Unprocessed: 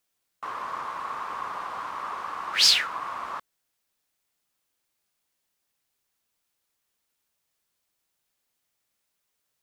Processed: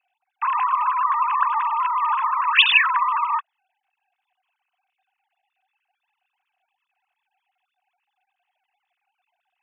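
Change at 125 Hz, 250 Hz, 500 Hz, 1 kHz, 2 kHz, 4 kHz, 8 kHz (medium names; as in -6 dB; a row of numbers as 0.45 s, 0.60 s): no reading, under -25 dB, under -15 dB, +13.0 dB, +11.5 dB, +1.0 dB, under -40 dB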